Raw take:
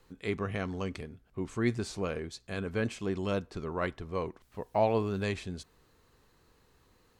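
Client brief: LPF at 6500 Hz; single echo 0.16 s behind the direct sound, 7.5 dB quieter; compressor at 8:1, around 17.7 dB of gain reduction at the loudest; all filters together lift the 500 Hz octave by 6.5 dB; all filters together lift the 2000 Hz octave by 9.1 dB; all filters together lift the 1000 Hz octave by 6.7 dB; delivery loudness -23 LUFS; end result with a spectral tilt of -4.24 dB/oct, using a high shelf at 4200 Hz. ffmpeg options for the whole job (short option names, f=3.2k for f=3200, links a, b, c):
-af "lowpass=6.5k,equalizer=f=500:t=o:g=6.5,equalizer=f=1k:t=o:g=4,equalizer=f=2k:t=o:g=8.5,highshelf=f=4.2k:g=6.5,acompressor=threshold=-33dB:ratio=8,aecho=1:1:160:0.422,volume=15dB"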